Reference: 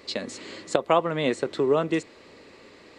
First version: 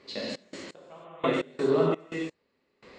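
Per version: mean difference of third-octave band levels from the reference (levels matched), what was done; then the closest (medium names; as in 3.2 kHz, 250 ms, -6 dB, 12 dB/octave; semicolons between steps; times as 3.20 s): 9.5 dB: distance through air 72 m; gated-style reverb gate 330 ms flat, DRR -7.5 dB; trance gate "xx.x...x." 85 bpm -24 dB; trim -8 dB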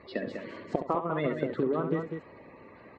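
7.0 dB: coarse spectral quantiser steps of 30 dB; low-pass 1.6 kHz 12 dB/octave; compression 10:1, threshold -25 dBFS, peak gain reduction 10 dB; loudspeakers at several distances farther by 23 m -9 dB, 68 m -7 dB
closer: second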